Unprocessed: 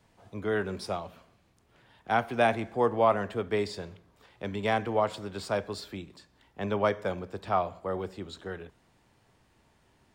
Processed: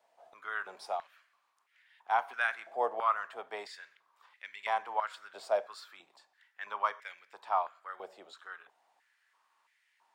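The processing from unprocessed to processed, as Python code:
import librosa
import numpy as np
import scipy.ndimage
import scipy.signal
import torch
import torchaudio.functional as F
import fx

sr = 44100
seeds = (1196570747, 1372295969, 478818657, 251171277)

y = fx.filter_held_highpass(x, sr, hz=3.0, low_hz=660.0, high_hz=2000.0)
y = y * librosa.db_to_amplitude(-8.5)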